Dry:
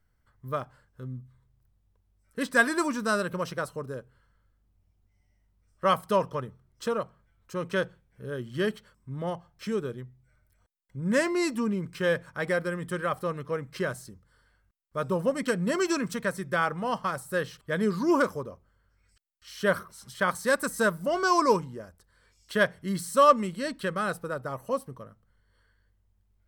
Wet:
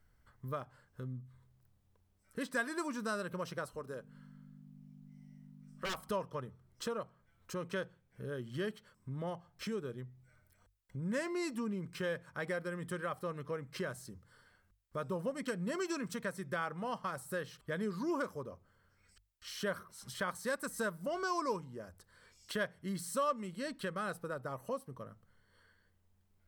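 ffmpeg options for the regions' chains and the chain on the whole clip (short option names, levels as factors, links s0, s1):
-filter_complex "[0:a]asettb=1/sr,asplit=3[s0][s1][s2];[s0]atrim=end=3.734[s3];[s1]atrim=start=3.73:end=6.09,asetpts=PTS-STARTPTS,afade=t=in:d=0.004:c=qsin,afade=t=out:st=2.356:d=0.004:c=qsin,equalizer=f=93:w=0.35:g=-9,aeval=exprs='val(0)+0.00398*(sin(2*PI*50*n/s)+sin(2*PI*2*50*n/s)/2+sin(2*PI*3*50*n/s)/3+sin(2*PI*4*50*n/s)/4+sin(2*PI*5*50*n/s)/5)':c=same,aeval=exprs='0.0631*(abs(mod(val(0)/0.0631+3,4)-2)-1)':c=same[s4];[s2]atrim=start=6.086[s5];[s3][s4]acrossfade=d=0.004:c1=hsin:c2=qsin[s6];[s6][s5]acrossfade=d=0.004:c1=qsin:c2=hsin,bandreject=f=50:t=h:w=6,bandreject=f=100:t=h:w=6,acompressor=threshold=0.00447:ratio=2,volume=1.26"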